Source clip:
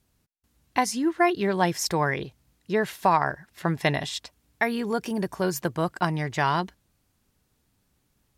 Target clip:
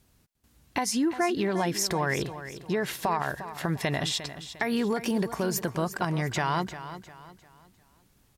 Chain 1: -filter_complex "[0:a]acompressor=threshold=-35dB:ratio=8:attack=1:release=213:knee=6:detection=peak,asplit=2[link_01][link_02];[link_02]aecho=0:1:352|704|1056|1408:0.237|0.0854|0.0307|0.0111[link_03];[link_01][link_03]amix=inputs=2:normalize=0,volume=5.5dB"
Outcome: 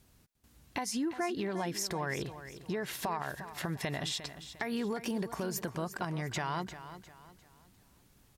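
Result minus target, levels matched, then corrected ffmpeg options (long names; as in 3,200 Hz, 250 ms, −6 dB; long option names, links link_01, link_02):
downward compressor: peak gain reduction +8 dB
-filter_complex "[0:a]acompressor=threshold=-26dB:ratio=8:attack=1:release=213:knee=6:detection=peak,asplit=2[link_01][link_02];[link_02]aecho=0:1:352|704|1056|1408:0.237|0.0854|0.0307|0.0111[link_03];[link_01][link_03]amix=inputs=2:normalize=0,volume=5.5dB"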